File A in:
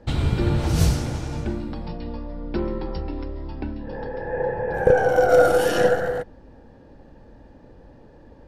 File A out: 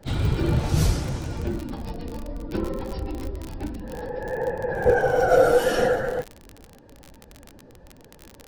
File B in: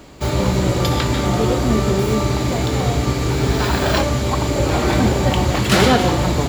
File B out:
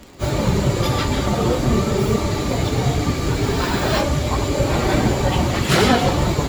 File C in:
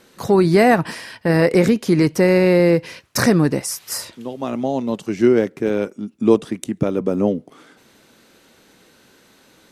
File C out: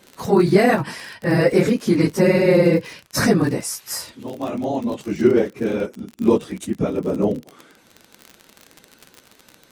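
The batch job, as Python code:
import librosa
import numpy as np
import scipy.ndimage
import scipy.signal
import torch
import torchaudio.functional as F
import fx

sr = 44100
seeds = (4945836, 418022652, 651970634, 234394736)

y = fx.phase_scramble(x, sr, seeds[0], window_ms=50)
y = fx.dmg_crackle(y, sr, seeds[1], per_s=45.0, level_db=-25.0)
y = F.gain(torch.from_numpy(y), -1.5).numpy()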